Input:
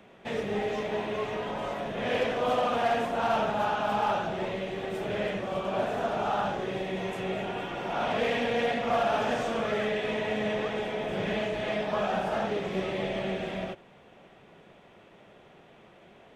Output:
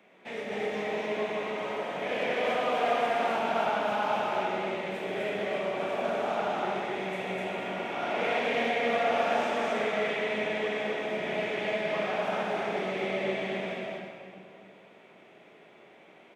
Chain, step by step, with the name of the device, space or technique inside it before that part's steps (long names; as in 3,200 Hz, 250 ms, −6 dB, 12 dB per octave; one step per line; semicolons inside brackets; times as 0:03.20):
stadium PA (high-pass filter 220 Hz 12 dB per octave; parametric band 2,200 Hz +7.5 dB 0.32 octaves; loudspeakers that aren't time-aligned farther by 52 metres −10 dB, 87 metres −1 dB; convolution reverb RT60 2.3 s, pre-delay 30 ms, DRR 0 dB)
level −6.5 dB